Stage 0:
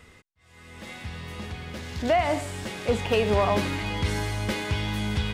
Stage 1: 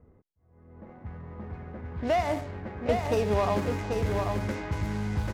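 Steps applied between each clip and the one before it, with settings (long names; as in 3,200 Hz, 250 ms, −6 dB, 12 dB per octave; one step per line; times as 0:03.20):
running median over 15 samples
single-tap delay 789 ms −5 dB
low-pass that shuts in the quiet parts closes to 580 Hz, open at −22 dBFS
level −3 dB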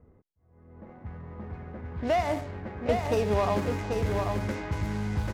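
no processing that can be heard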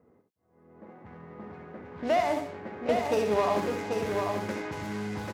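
high-pass filter 210 Hz 12 dB per octave
multi-tap delay 67/84 ms −7.5/−16.5 dB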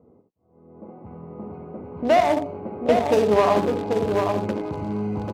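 adaptive Wiener filter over 25 samples
level +8.5 dB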